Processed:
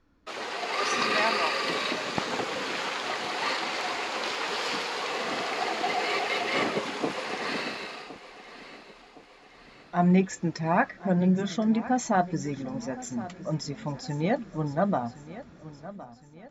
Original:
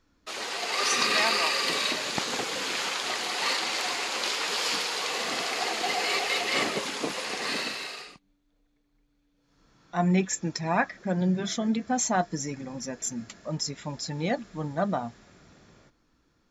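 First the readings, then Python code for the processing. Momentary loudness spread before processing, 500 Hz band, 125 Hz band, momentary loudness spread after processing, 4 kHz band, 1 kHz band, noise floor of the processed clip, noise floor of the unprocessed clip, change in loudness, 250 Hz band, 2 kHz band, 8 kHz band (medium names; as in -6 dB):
10 LU, +2.0 dB, +2.5 dB, 19 LU, -4.5 dB, +1.5 dB, -53 dBFS, -70 dBFS, -0.5 dB, +2.5 dB, -1.0 dB, -8.5 dB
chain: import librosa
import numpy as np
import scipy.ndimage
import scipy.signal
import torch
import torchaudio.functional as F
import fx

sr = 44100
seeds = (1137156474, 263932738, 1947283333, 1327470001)

y = fx.lowpass(x, sr, hz=1800.0, slope=6)
y = fx.echo_feedback(y, sr, ms=1064, feedback_pct=46, wet_db=-16)
y = F.gain(torch.from_numpy(y), 2.5).numpy()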